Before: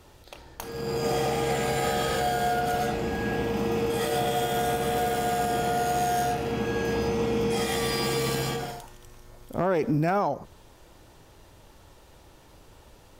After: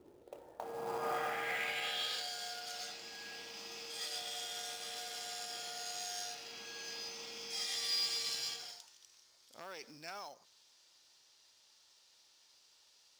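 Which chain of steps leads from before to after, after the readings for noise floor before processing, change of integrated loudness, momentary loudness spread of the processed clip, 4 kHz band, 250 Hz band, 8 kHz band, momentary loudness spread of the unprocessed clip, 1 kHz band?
-54 dBFS, -12.5 dB, 14 LU, -3.0 dB, -29.0 dB, -7.0 dB, 6 LU, -17.5 dB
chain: band-pass sweep 330 Hz -> 5000 Hz, 0.04–2.3; short-mantissa float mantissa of 2-bit; gain +1 dB

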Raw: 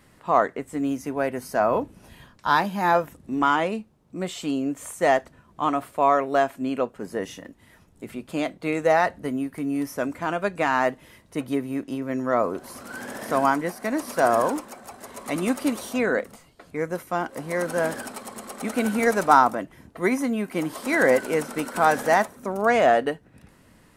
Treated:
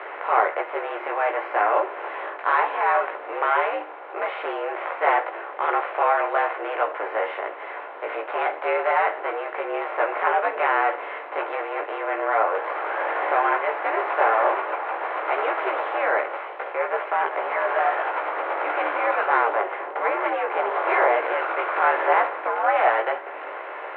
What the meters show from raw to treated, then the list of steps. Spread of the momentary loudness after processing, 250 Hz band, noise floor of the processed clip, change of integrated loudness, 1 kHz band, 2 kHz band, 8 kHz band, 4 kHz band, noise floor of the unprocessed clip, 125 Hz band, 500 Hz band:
9 LU, -13.5 dB, -36 dBFS, +0.5 dB, +3.0 dB, +3.5 dB, under -40 dB, -3.0 dB, -57 dBFS, under -40 dB, -0.5 dB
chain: per-bin compression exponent 0.4; chorus voices 6, 0.41 Hz, delay 16 ms, depth 3.5 ms; mistuned SSB +89 Hz 340–2800 Hz; gain -3 dB

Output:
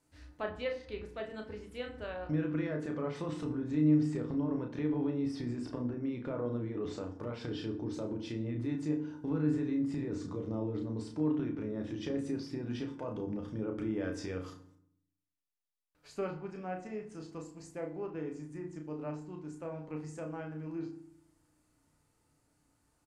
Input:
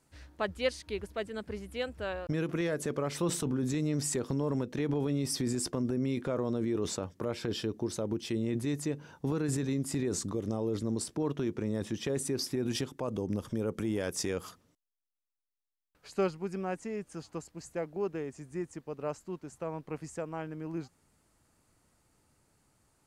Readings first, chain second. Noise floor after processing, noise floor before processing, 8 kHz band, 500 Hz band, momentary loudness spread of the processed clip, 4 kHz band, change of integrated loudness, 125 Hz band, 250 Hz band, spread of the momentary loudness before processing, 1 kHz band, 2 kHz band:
-76 dBFS, under -85 dBFS, under -15 dB, -4.5 dB, 11 LU, -10.5 dB, -2.5 dB, -2.5 dB, -0.5 dB, 8 LU, -4.5 dB, -5.0 dB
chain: doubler 33 ms -6 dB; treble ducked by the level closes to 2500 Hz, closed at -28 dBFS; FDN reverb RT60 0.65 s, low-frequency decay 1.45×, high-frequency decay 0.6×, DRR 5 dB; gain -6.5 dB

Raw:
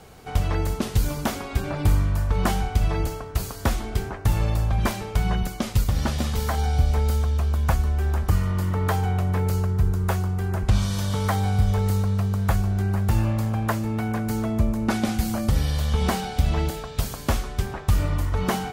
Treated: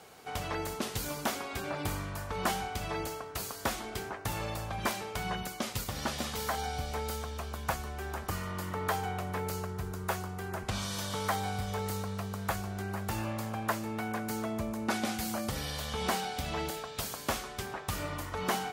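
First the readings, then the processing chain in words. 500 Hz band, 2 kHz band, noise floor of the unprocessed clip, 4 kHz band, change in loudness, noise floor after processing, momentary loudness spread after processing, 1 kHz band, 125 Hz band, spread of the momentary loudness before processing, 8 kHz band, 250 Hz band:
-6.0 dB, -3.5 dB, -36 dBFS, -3.0 dB, -11.0 dB, -44 dBFS, 5 LU, -4.5 dB, -17.0 dB, 5 LU, -3.0 dB, -10.5 dB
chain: HPF 480 Hz 6 dB/oct; in parallel at -4 dB: soft clip -21 dBFS, distortion -17 dB; on the sum: gain -7 dB

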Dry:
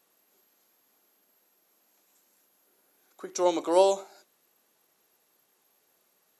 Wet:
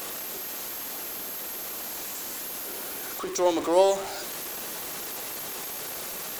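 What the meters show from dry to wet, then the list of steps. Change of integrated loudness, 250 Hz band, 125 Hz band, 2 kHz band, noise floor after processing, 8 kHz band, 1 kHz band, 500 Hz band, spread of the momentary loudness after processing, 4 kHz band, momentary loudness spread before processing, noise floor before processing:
-4.0 dB, +2.5 dB, n/a, +13.0 dB, -36 dBFS, +11.0 dB, +2.0 dB, +1.5 dB, 10 LU, +8.0 dB, 12 LU, -71 dBFS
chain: zero-crossing step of -29.5 dBFS

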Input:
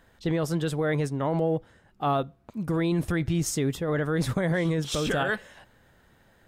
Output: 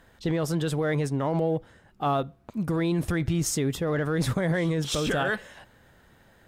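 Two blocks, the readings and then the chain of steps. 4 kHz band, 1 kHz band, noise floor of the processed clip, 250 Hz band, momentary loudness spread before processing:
+1.5 dB, 0.0 dB, -59 dBFS, 0.0 dB, 4 LU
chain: limiter -20.5 dBFS, peak gain reduction 3.5 dB; added harmonics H 7 -45 dB, 8 -41 dB, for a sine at -20.5 dBFS; gain +3 dB

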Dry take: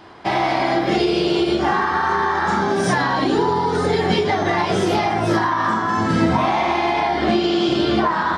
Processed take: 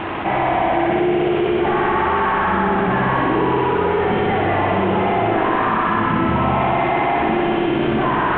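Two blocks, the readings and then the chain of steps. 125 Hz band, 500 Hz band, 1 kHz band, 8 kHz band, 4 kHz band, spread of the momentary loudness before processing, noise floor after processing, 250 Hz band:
+1.5 dB, +1.5 dB, +1.5 dB, under -40 dB, -6.0 dB, 1 LU, -19 dBFS, +0.5 dB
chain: CVSD 16 kbps; on a send: multi-head echo 62 ms, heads all three, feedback 63%, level -6.5 dB; on the sum: fast leveller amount 70%; gain -4 dB

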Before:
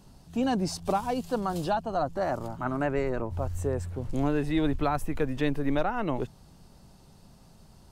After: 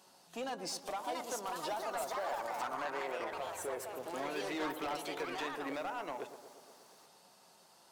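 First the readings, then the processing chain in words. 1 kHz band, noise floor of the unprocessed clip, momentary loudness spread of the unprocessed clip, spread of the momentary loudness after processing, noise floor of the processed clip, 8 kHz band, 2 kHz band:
-7.0 dB, -55 dBFS, 5 LU, 9 LU, -63 dBFS, -0.5 dB, -4.0 dB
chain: HPF 600 Hz 12 dB/oct; compressor 3:1, threshold -37 dBFS, peak gain reduction 10 dB; flange 0.27 Hz, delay 5.3 ms, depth 2.4 ms, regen +76%; hard clip -39.5 dBFS, distortion -12 dB; echoes that change speed 0.78 s, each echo +4 st, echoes 2; on a send: tape echo 0.117 s, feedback 78%, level -9.5 dB, low-pass 1300 Hz; on the sum: gain +4.5 dB

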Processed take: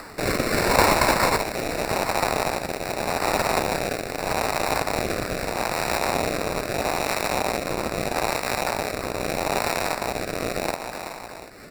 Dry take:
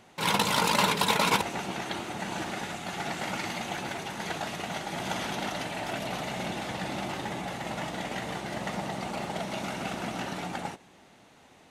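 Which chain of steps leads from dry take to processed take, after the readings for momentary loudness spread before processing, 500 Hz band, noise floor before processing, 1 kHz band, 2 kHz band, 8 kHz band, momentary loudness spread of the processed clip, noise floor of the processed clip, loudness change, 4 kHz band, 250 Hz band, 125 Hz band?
11 LU, +11.0 dB, -57 dBFS, +6.5 dB, +6.5 dB, +7.0 dB, 8 LU, -38 dBFS, +6.5 dB, +2.5 dB, +5.0 dB, +5.0 dB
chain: rattling part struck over -43 dBFS, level -17 dBFS; elliptic band-pass 960–5100 Hz; high shelf 2200 Hz +8 dB; echo 0.737 s -22.5 dB; upward compressor, threshold -28 dBFS; feedback echo 0.377 s, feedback 51%, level -11 dB; sample-rate reducer 3200 Hz, jitter 0%; rotary speaker horn 0.8 Hz; gain +5 dB

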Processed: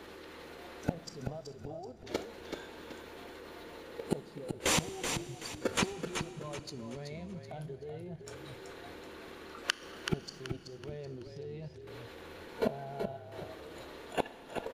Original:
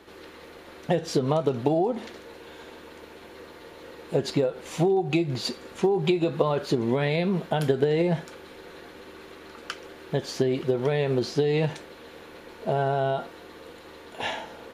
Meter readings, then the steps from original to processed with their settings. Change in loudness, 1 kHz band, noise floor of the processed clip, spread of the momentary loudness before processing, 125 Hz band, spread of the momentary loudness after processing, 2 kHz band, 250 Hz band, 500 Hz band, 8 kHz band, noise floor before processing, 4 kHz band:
-13.5 dB, -10.5 dB, -51 dBFS, 21 LU, -13.0 dB, 14 LU, -5.0 dB, -13.0 dB, -14.5 dB, +3.5 dB, -47 dBFS, -4.5 dB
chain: flipped gate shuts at -25 dBFS, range -28 dB; level quantiser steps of 14 dB; spectral noise reduction 8 dB; on a send: frequency-shifting echo 0.379 s, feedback 36%, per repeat -34 Hz, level -6.5 dB; on the sum: Schroeder reverb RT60 3.3 s, combs from 26 ms, DRR 16 dB; gain +14.5 dB

